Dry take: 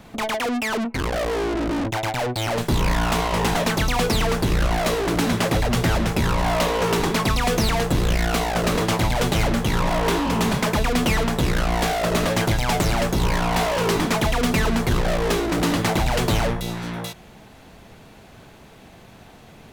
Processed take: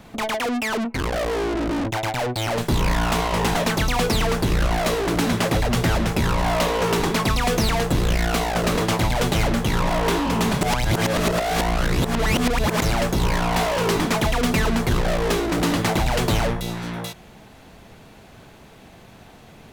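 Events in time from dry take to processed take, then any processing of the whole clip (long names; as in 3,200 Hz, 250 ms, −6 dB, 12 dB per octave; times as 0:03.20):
0:10.61–0:12.82: reverse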